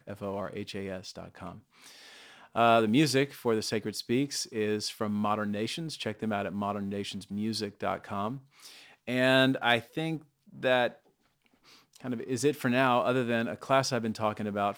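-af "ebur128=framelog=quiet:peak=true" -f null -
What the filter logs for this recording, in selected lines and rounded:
Integrated loudness:
  I:         -29.6 LUFS
  Threshold: -40.5 LUFS
Loudness range:
  LRA:         4.6 LU
  Threshold: -50.3 LUFS
  LRA low:   -33.1 LUFS
  LRA high:  -28.6 LUFS
True peak:
  Peak:       -9.3 dBFS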